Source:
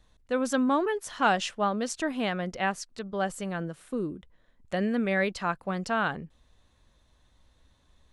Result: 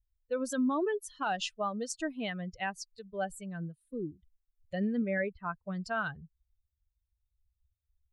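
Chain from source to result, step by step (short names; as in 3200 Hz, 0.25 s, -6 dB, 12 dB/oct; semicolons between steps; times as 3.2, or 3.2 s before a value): per-bin expansion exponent 2; 5.02–5.68 LPF 1900 Hz 24 dB/oct; limiter -23.5 dBFS, peak gain reduction 9.5 dB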